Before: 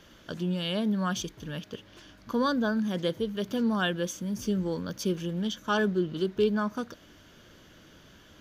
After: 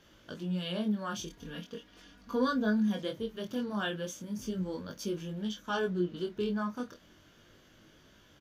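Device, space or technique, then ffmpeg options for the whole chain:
double-tracked vocal: -filter_complex "[0:a]asplit=2[link_01][link_02];[link_02]adelay=28,volume=-12.5dB[link_03];[link_01][link_03]amix=inputs=2:normalize=0,flanger=delay=19:depth=5.9:speed=0.38,asettb=1/sr,asplit=3[link_04][link_05][link_06];[link_04]atrim=end=1.304[link_07];[link_05]atrim=start=1.3:end=3.03,asetpts=PTS-STARTPTS,afade=type=in:duration=0.004:curve=qsin,afade=type=out:start_time=1.726:duration=0.004:curve=qsin,aecho=1:1:4.2:0.65,atrim=end_sample=76293[link_08];[link_06]atrim=start=3.026[link_09];[link_07][link_08]acrossfade=duration=0.004:curve1=hsin:curve2=qsin[link_10];[link_10][link_09]acrossfade=duration=0.004:curve1=qsin:curve2=hsin,volume=-3dB"

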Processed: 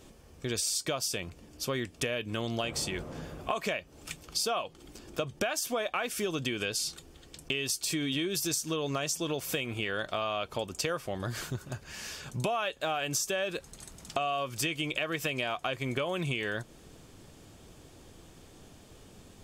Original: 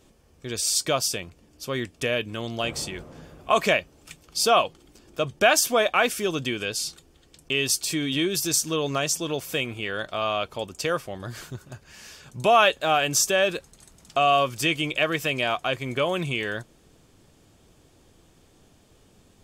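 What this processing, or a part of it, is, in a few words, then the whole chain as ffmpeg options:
serial compression, peaks first: -af "acompressor=threshold=-28dB:ratio=6,acompressor=threshold=-40dB:ratio=1.5,volume=4dB"

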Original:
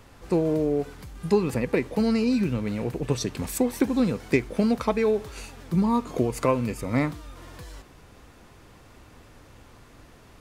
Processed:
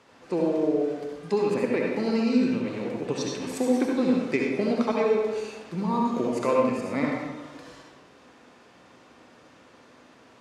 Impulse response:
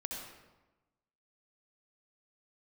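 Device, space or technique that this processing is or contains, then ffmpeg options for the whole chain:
supermarket ceiling speaker: -filter_complex "[0:a]highpass=240,lowpass=6700[link_01];[1:a]atrim=start_sample=2205[link_02];[link_01][link_02]afir=irnorm=-1:irlink=0"

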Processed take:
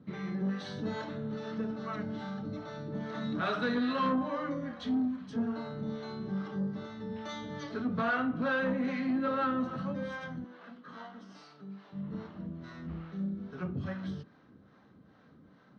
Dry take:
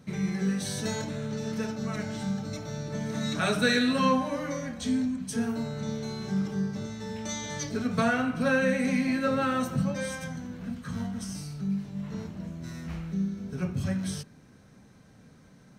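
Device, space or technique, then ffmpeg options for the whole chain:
guitar amplifier with harmonic tremolo: -filter_complex "[0:a]asettb=1/sr,asplit=3[link_01][link_02][link_03];[link_01]atrim=end=10.444[link_04];[link_02]atrim=start=10.44:end=11.92,asetpts=PTS-STARTPTS,afade=type=in:duration=0.004:curve=qsin,afade=type=out:start_time=1.476:duration=0.004:curve=qsin,highpass=430[link_05];[link_03]atrim=start=11.916[link_06];[link_04][link_05]acrossfade=duration=0.004:curve1=hsin:curve2=qsin[link_07];[link_07][link_06]acrossfade=duration=0.004:curve1=qsin:curve2=hsin,acrossover=split=490[link_08][link_09];[link_08]aeval=exprs='val(0)*(1-0.7/2+0.7/2*cos(2*PI*2.4*n/s))':channel_layout=same[link_10];[link_09]aeval=exprs='val(0)*(1-0.7/2-0.7/2*cos(2*PI*2.4*n/s))':channel_layout=same[link_11];[link_10][link_11]amix=inputs=2:normalize=0,asoftclip=type=tanh:threshold=-25.5dB,highpass=83,equalizer=frequency=110:width_type=q:width=4:gain=-4,equalizer=frequency=150:width_type=q:width=4:gain=-3,equalizer=frequency=310:width_type=q:width=4:gain=5,equalizer=frequency=1200:width_type=q:width=4:gain=6,equalizer=frequency=2400:width_type=q:width=4:gain=-8,lowpass=frequency=3700:width=0.5412,lowpass=frequency=3700:width=1.3066"

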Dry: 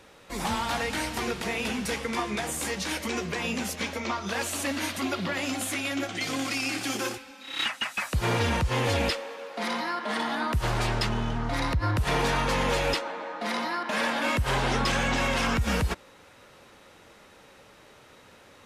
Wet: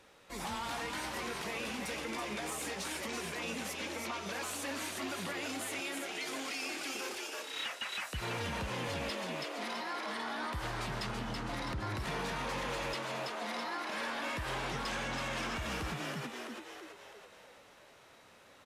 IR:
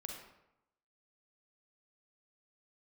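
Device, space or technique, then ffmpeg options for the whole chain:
soft clipper into limiter: -filter_complex "[0:a]asettb=1/sr,asplit=3[link_01][link_02][link_03];[link_01]atrim=end=5.804[link_04];[link_02]atrim=start=5.8:end=7.36,asetpts=PTS-STARTPTS,afade=type=in:duration=0.004:curve=qsin,afade=type=out:start_time=1.556:duration=0.004:curve=qsin,highpass=240[link_05];[link_03]atrim=start=7.356[link_06];[link_04][link_05]acrossfade=duration=0.004:curve1=hsin:curve2=qsin[link_07];[link_07][link_06]acrossfade=duration=0.004:curve1=qsin:curve2=hsin,lowshelf=frequency=340:gain=-4,asplit=8[link_08][link_09][link_10][link_11][link_12][link_13][link_14][link_15];[link_09]adelay=329,afreqshift=86,volume=-5dB[link_16];[link_10]adelay=658,afreqshift=172,volume=-10.5dB[link_17];[link_11]adelay=987,afreqshift=258,volume=-16dB[link_18];[link_12]adelay=1316,afreqshift=344,volume=-21.5dB[link_19];[link_13]adelay=1645,afreqshift=430,volume=-27.1dB[link_20];[link_14]adelay=1974,afreqshift=516,volume=-32.6dB[link_21];[link_15]adelay=2303,afreqshift=602,volume=-38.1dB[link_22];[link_08][link_16][link_17][link_18][link_19][link_20][link_21][link_22]amix=inputs=8:normalize=0,asoftclip=type=tanh:threshold=-18dB,alimiter=limit=-23.5dB:level=0:latency=1,volume=-7dB"

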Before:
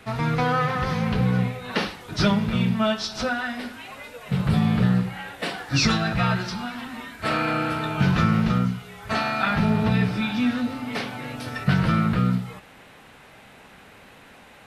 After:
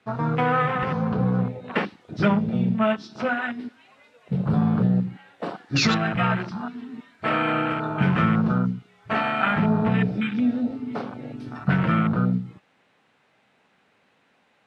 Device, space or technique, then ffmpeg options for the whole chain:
over-cleaned archive recording: -af "highpass=140,lowpass=6900,afwtdn=0.0398,volume=1.5dB"

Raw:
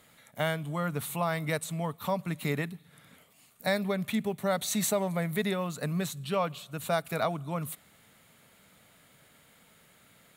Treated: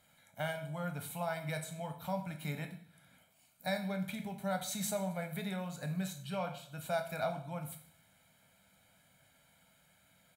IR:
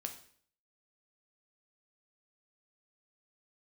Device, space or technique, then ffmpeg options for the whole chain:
microphone above a desk: -filter_complex "[0:a]aecho=1:1:1.3:0.64[link_01];[1:a]atrim=start_sample=2205[link_02];[link_01][link_02]afir=irnorm=-1:irlink=0,volume=-7.5dB"

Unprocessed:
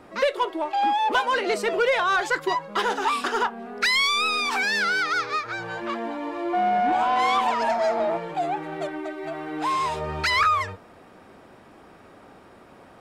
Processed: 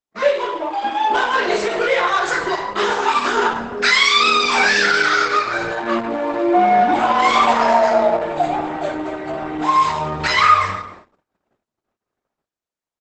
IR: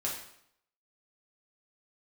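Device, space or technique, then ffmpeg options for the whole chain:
speakerphone in a meeting room: -filter_complex "[1:a]atrim=start_sample=2205[link_01];[0:a][link_01]afir=irnorm=-1:irlink=0,asplit=2[link_02][link_03];[link_03]adelay=280,highpass=300,lowpass=3400,asoftclip=type=hard:threshold=-12.5dB,volume=-21dB[link_04];[link_02][link_04]amix=inputs=2:normalize=0,dynaudnorm=framelen=870:gausssize=7:maxgain=14.5dB,agate=range=-53dB:threshold=-38dB:ratio=16:detection=peak" -ar 48000 -c:a libopus -b:a 12k

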